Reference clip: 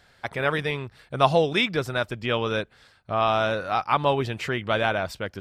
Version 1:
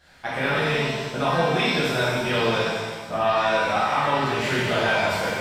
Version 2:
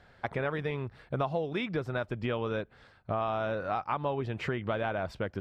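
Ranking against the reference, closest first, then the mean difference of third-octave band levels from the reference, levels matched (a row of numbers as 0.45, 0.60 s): 2, 1; 4.5, 10.0 dB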